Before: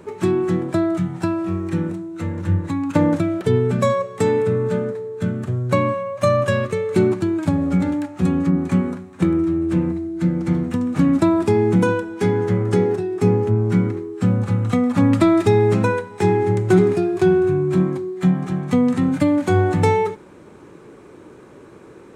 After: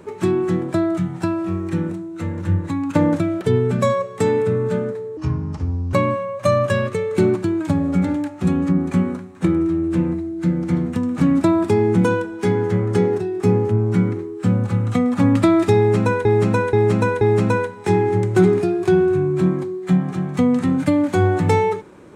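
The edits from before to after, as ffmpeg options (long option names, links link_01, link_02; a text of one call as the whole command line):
ffmpeg -i in.wav -filter_complex "[0:a]asplit=6[link_01][link_02][link_03][link_04][link_05][link_06];[link_01]atrim=end=5.174[link_07];[link_02]atrim=start=5.17:end=5.71,asetpts=PTS-STARTPTS,asetrate=31311,aresample=44100[link_08];[link_03]atrim=start=5.706:end=16.032[link_09];[link_04]atrim=start=15.548:end=16.032[link_10];[link_05]atrim=start=15.548:end=16.032[link_11];[link_06]atrim=start=15.548[link_12];[link_07][link_08]acrossfade=duration=0.004:curve1=hsin:curve2=hsin[link_13];[link_13][link_09]acrossfade=duration=0.004:curve1=hsin:curve2=hsin[link_14];[link_14][link_10]acrossfade=duration=0.004:curve1=hsin:curve2=hsin[link_15];[link_15][link_11]acrossfade=duration=0.004:curve1=hsin:curve2=hsin[link_16];[link_16][link_12]acrossfade=duration=0.004:curve1=hsin:curve2=hsin" out.wav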